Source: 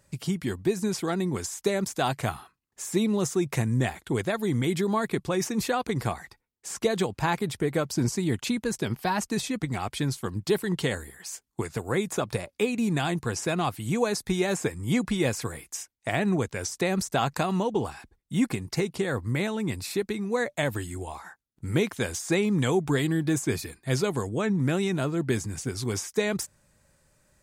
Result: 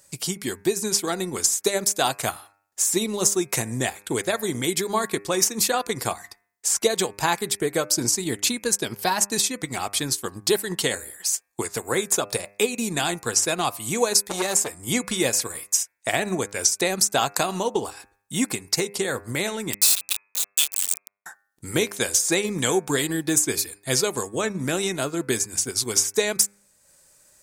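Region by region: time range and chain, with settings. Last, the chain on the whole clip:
0:14.13–0:14.71: high-shelf EQ 7,900 Hz +3.5 dB + saturating transformer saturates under 890 Hz
0:19.73–0:21.26: de-essing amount 65% + Chebyshev high-pass with heavy ripple 2,500 Hz, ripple 3 dB + log-companded quantiser 2 bits
whole clip: bass and treble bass −10 dB, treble +11 dB; hum removal 100.9 Hz, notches 26; transient designer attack +2 dB, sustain −5 dB; level +3.5 dB

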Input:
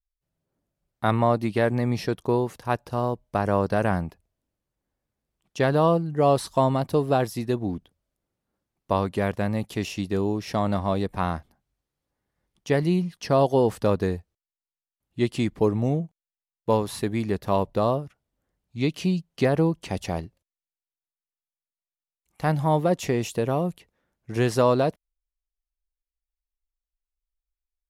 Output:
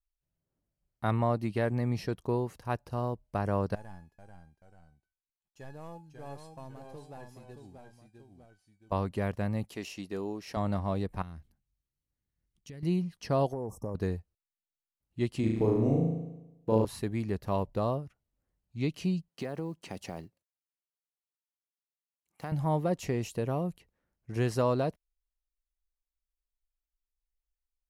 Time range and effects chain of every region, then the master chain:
0:03.75–0:08.92: variable-slope delta modulation 64 kbit/s + tuned comb filter 840 Hz, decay 0.24 s, mix 90% + delay with pitch and tempo change per echo 433 ms, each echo −1 semitone, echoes 2, each echo −6 dB
0:09.69–0:10.57: high-pass filter 53 Hz + parametric band 100 Hz −14 dB 1.8 octaves
0:11.22–0:12.83: parametric band 800 Hz −12 dB 2.2 octaves + notch filter 5,000 Hz, Q 15 + downward compressor 5 to 1, threshold −37 dBFS
0:13.52–0:13.95: linear-phase brick-wall band-stop 1,200–5,200 Hz + downward compressor 5 to 1, threshold −25 dBFS
0:15.40–0:16.85: downward compressor 1.5 to 1, threshold −30 dBFS + parametric band 350 Hz +7 dB 1.9 octaves + flutter between parallel walls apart 6.2 metres, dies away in 0.94 s
0:19.28–0:22.52: one scale factor per block 7 bits + high-pass filter 170 Hz + downward compressor 3 to 1, threshold −26 dBFS
whole clip: low-shelf EQ 120 Hz +8.5 dB; notch filter 3,500 Hz, Q 14; level −8.5 dB

